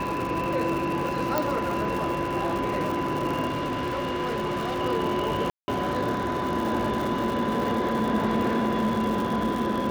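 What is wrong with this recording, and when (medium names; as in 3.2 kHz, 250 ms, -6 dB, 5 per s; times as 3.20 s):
crackle 190 per s -30 dBFS
whine 1 kHz -30 dBFS
1.38 s: pop -9 dBFS
3.47–4.81 s: clipped -24.5 dBFS
5.50–5.68 s: dropout 180 ms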